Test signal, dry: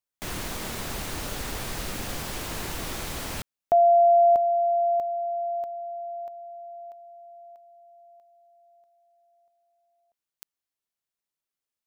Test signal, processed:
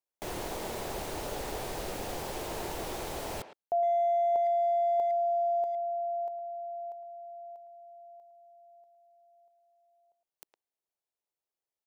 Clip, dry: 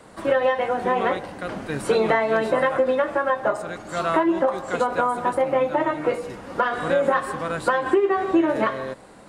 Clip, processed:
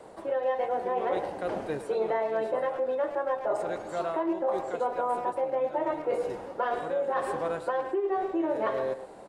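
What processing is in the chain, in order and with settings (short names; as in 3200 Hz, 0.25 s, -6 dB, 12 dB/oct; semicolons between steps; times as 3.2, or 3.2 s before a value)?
band shelf 560 Hz +9 dB; reverse; compressor 16:1, threshold -18 dBFS; reverse; speakerphone echo 0.11 s, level -11 dB; gain -7 dB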